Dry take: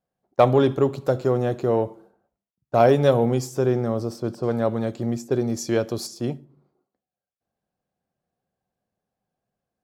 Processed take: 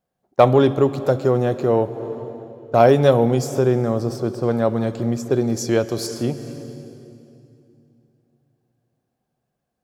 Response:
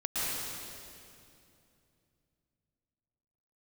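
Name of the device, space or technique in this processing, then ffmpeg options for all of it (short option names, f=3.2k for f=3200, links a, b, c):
ducked reverb: -filter_complex "[0:a]asplit=3[a][b][c];[1:a]atrim=start_sample=2205[d];[b][d]afir=irnorm=-1:irlink=0[e];[c]apad=whole_len=433659[f];[e][f]sidechaincompress=threshold=-25dB:ratio=8:attack=16:release=390,volume=-15.5dB[g];[a][g]amix=inputs=2:normalize=0,volume=3dB"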